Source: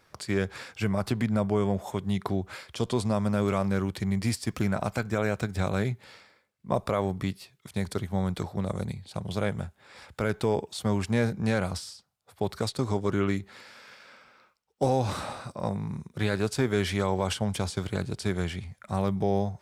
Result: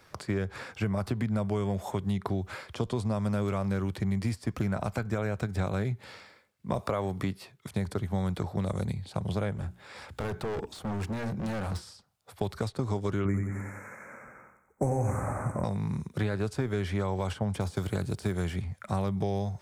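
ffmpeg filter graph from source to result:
-filter_complex "[0:a]asettb=1/sr,asplit=3[a][b][c];[a]atrim=end=6.784[d];[b]atrim=start=6.78:end=7.52,asetpts=PTS-STARTPTS,afade=t=in:d=0.004:c=qsin,afade=t=out:st=0.736:d=0.004:c=qsin,highpass=f=250:p=1,acontrast=49[e];[c]atrim=start=7.516[f];[d][e]acrossfade=d=0.004:c1=hsin:c2=qsin[g];[g][f]acrossfade=d=0.004:c1=qsin:c2=hsin,asettb=1/sr,asplit=3[h][i][j];[h]atrim=end=9.554[k];[i]atrim=start=9.55:end=11.82,asetpts=PTS-STARTPTS,afade=t=in:d=0.004:c=qsin,afade=t=out:st=2.266:d=0.004:c=qsin,volume=33dB,asoftclip=hard,volume=-33dB,bandreject=f=60:t=h:w=6,bandreject=f=120:t=h:w=6,bandreject=f=180:t=h:w=6,bandreject=f=240:t=h:w=6,bandreject=f=300:t=h:w=6,bandreject=f=360:t=h:w=6[l];[j]atrim=start=11.816[m];[k][l]acrossfade=d=0.004:c1=hsin:c2=qsin[n];[n][m]acrossfade=d=0.004:c1=qsin:c2=hsin,asettb=1/sr,asplit=3[o][p][q];[o]atrim=end=13.254[r];[p]atrim=start=13.25:end=15.64,asetpts=PTS-STARTPTS,afade=t=in:d=0.004:c=qsin,afade=t=out:st=2.386:d=0.004:c=qsin,asuperstop=centerf=3800:order=12:qfactor=0.93,lowshelf=f=340:g=8,aecho=1:1:90|180|270|360|450:0.447|0.205|0.0945|0.0435|0.02,atrim=end_sample=105399[s];[q]atrim=start=15.636[t];[r][s]acrossfade=d=0.004:c1=hsin:c2=qsin[u];[u][t]acrossfade=d=0.004:c1=qsin:c2=hsin,asettb=1/sr,asplit=3[v][w][x];[v]atrim=end=17.604[y];[w]atrim=start=17.6:end=18.62,asetpts=PTS-STARTPTS,afade=t=in:d=0.004:c=qsin,afade=t=out:st=1.016:d=0.004:c=qsin,aemphasis=mode=production:type=50kf,deesser=0.75[z];[x]atrim=start=18.616[aa];[y][z]acrossfade=d=0.004:c1=hsin:c2=qsin[ab];[ab][aa]acrossfade=d=0.004:c1=qsin:c2=hsin,equalizer=f=90:t=o:w=0.77:g=2,acrossover=split=100|1800[ac][ad][ae];[ac]acompressor=threshold=-41dB:ratio=4[af];[ad]acompressor=threshold=-34dB:ratio=4[ag];[ae]acompressor=threshold=-53dB:ratio=4[ah];[af][ag][ah]amix=inputs=3:normalize=0,volume=4.5dB"

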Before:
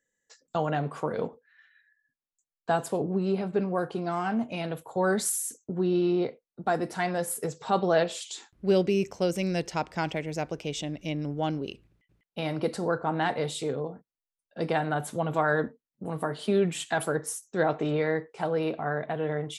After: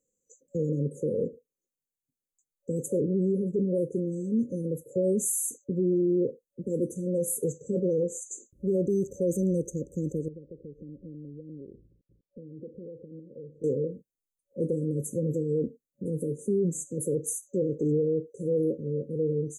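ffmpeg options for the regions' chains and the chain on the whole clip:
-filter_complex "[0:a]asettb=1/sr,asplit=3[a][b][c];[a]atrim=end=10.284[d];[b]atrim=start=10.28:end=13.64,asetpts=PTS-STARTPTS,afade=t=in:d=0.004:c=qsin,afade=t=out:st=3.356:d=0.004:c=qsin,lowpass=f=1.4k:w=0.5412,lowpass=f=1.4k:w=1.3066,acompressor=threshold=-45dB:ratio=4:attack=3.2:release=140:knee=1:detection=peak[e];[c]atrim=start=13.636[f];[d][e]acrossfade=d=0.004:c1=hsin:c2=qsin[g];[g][f]acrossfade=d=0.004:c1=qsin:c2=hsin,afftfilt=real='re*(1-between(b*sr/4096,560,6000))':imag='im*(1-between(b*sr/4096,560,6000))':win_size=4096:overlap=0.75,equalizer=f=880:w=3.1:g=13,alimiter=limit=-22dB:level=0:latency=1:release=21,volume=3dB"

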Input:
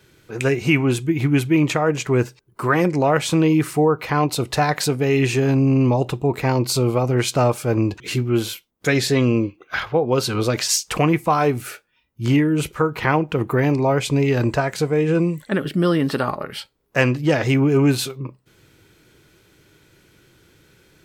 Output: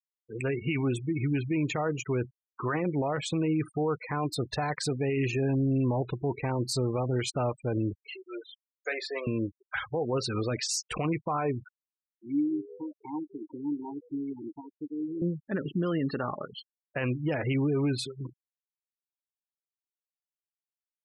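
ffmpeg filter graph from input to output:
-filter_complex "[0:a]asettb=1/sr,asplit=3[a][b][c];[a]atrim=end=8.054[d];[b]atrim=start=8.05:end=9.27,asetpts=PTS-STARTPTS,afade=t=in:d=0.004:c=qsin,afade=t=out:st=1.216:d=0.004:c=qsin,highpass=f=490:w=0.5412,highpass=f=490:w=1.3066,highshelf=f=3.2k:g=-6,asplit=2[e][f];[f]adelay=37,volume=-14dB[g];[e][g]amix=inputs=2:normalize=0,atrim=end_sample=53802[h];[c]atrim=start=9.266[i];[d][h]acrossfade=d=0.004:c1=hsin:c2=qsin[j];[j][i]acrossfade=d=0.004:c1=qsin:c2=hsin,asettb=1/sr,asplit=3[k][l][m];[k]atrim=end=11.684[n];[l]atrim=start=11.68:end=15.22,asetpts=PTS-STARTPTS,afade=t=in:d=0.004:c=qsin,afade=t=out:st=3.536:d=0.004:c=qsin,asplit=3[o][p][q];[o]bandpass=f=300:t=q:w=8,volume=0dB[r];[p]bandpass=f=870:t=q:w=8,volume=-6dB[s];[q]bandpass=f=2.24k:t=q:w=8,volume=-9dB[t];[r][s][t]amix=inputs=3:normalize=0,asplit=5[u][v][w][x][y];[v]adelay=173,afreqshift=98,volume=-18.5dB[z];[w]adelay=346,afreqshift=196,volume=-24dB[aa];[x]adelay=519,afreqshift=294,volume=-29.5dB[ab];[y]adelay=692,afreqshift=392,volume=-35dB[ac];[u][z][aa][ab][ac]amix=inputs=5:normalize=0,atrim=end_sample=156114[ad];[m]atrim=start=15.216[ae];[n][ad]acrossfade=d=0.004:c1=hsin:c2=qsin[af];[af][ae]acrossfade=d=0.004:c1=qsin:c2=hsin,afftfilt=real='re*gte(hypot(re,im),0.0708)':imag='im*gte(hypot(re,im),0.0708)':win_size=1024:overlap=0.75,alimiter=limit=-13dB:level=0:latency=1:release=21,volume=-8dB"

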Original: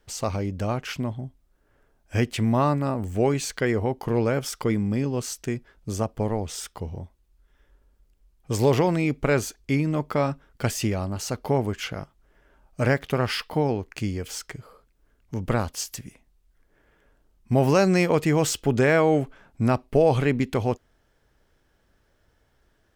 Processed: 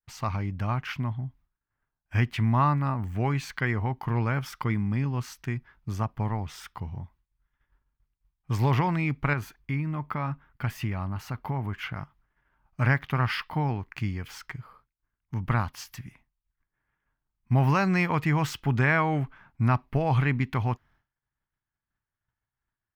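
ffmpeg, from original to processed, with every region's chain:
-filter_complex "[0:a]asettb=1/sr,asplit=3[a][b][c];[a]atrim=end=9.334[d];[b]atrim=start=9.33:end=11.96,asetpts=PTS-STARTPTS,afade=t=in:d=0.004:c=qsin,afade=t=out:st=2.626:d=0.004:c=qsin,equalizer=f=5.6k:t=o:w=1.4:g=-6,acompressor=threshold=-25dB:ratio=2:attack=3.2:release=140:knee=1:detection=peak[e];[c]atrim=start=11.956[f];[d][e]acrossfade=d=0.004:c1=hsin:c2=qsin[g];[g][f]acrossfade=d=0.004:c1=qsin:c2=hsin,agate=range=-33dB:threshold=-51dB:ratio=3:detection=peak,equalizer=f=125:t=o:w=1:g=8,equalizer=f=500:t=o:w=1:g=-11,equalizer=f=1k:t=o:w=1:g=9,equalizer=f=2k:t=o:w=1:g=6,equalizer=f=8k:t=o:w=1:g=-11,volume=-5.5dB"

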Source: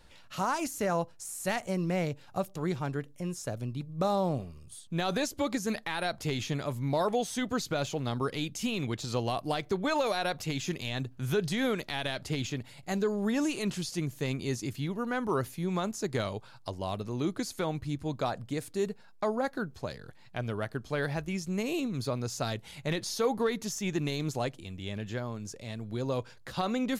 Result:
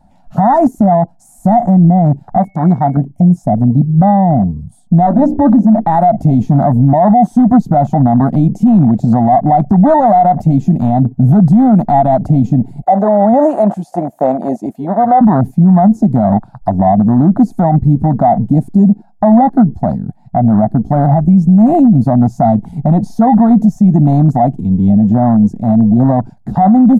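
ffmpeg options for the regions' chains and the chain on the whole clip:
-filter_complex "[0:a]asettb=1/sr,asplit=3[a][b][c];[a]atrim=end=2.374[d];[b]atrim=start=2.37:end=2.97,asetpts=PTS-STARTPTS,afade=t=in:d=0.004:c=qsin,afade=t=out:st=0.596:d=0.004:c=qsin,lowpass=9.5k,lowshelf=f=400:g=-9,aeval=exprs='val(0)+0.00794*sin(2*PI*2200*n/s)':c=same[e];[c]atrim=start=2.966[f];[d][e]acrossfade=d=0.004:c1=hsin:c2=qsin[g];[g][f]acrossfade=d=0.004:c1=qsin:c2=hsin,asettb=1/sr,asplit=3[h][i][j];[h]atrim=end=5.064[k];[i]atrim=start=5.06:end=5.83,asetpts=PTS-STARTPTS,afade=t=in:d=0.004:c=qsin,afade=t=out:st=0.766:d=0.004:c=qsin,aemphasis=mode=reproduction:type=75kf,bandreject=f=60:t=h:w=6,bandreject=f=120:t=h:w=6,bandreject=f=180:t=h:w=6,bandreject=f=240:t=h:w=6,bandreject=f=300:t=h:w=6,bandreject=f=360:t=h:w=6,bandreject=f=420:t=h:w=6,bandreject=f=480:t=h:w=6,bandreject=f=540:t=h:w=6,aecho=1:1:3.3:0.86,atrim=end_sample=33957[l];[j]atrim=start=5.826[m];[k][l]acrossfade=d=0.004:c1=hsin:c2=qsin[n];[n][m]acrossfade=d=0.004:c1=qsin:c2=hsin,asettb=1/sr,asplit=3[o][p][q];[o]atrim=end=12.824[r];[p]atrim=start=12.82:end=15.21,asetpts=PTS-STARTPTS,afade=t=in:d=0.004:c=qsin,afade=t=out:st=2.386:d=0.004:c=qsin,highpass=f=540:t=q:w=3.9,equalizer=f=5.1k:w=1.4:g=-4.5[s];[q]atrim=start=15.206[t];[r][s]acrossfade=d=0.004:c1=hsin:c2=qsin[u];[u][t]acrossfade=d=0.004:c1=qsin:c2=hsin,firequalizer=gain_entry='entry(110,0);entry(210,13);entry(440,-20);entry(710,14);entry(1100,-10);entry(2800,-21);entry(7700,-12)':delay=0.05:min_phase=1,afwtdn=0.0112,alimiter=level_in=25dB:limit=-1dB:release=50:level=0:latency=1,volume=-1dB"

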